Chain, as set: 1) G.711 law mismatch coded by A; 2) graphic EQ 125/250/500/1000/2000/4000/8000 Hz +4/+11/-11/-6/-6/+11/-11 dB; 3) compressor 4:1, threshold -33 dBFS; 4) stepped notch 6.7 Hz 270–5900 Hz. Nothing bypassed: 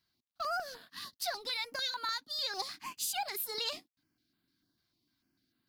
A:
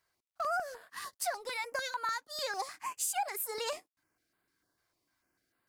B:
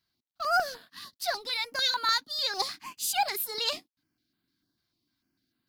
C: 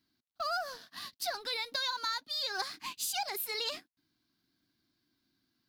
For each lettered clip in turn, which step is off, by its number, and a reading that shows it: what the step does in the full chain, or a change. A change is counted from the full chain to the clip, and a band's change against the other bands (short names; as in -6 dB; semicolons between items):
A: 2, 4 kHz band -10.0 dB; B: 3, mean gain reduction 5.0 dB; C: 4, crest factor change +1.5 dB